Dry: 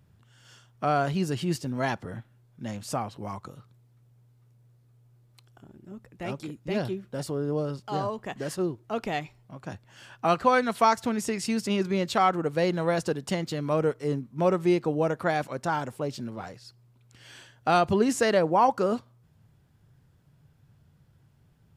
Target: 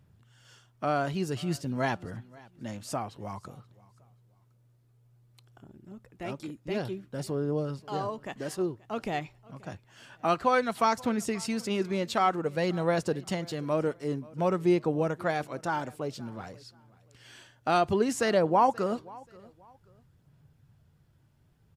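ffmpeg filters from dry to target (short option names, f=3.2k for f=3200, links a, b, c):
-af "aphaser=in_gain=1:out_gain=1:delay=3.4:decay=0.23:speed=0.54:type=sinusoidal,aecho=1:1:531|1062:0.0708|0.0205,volume=-3dB"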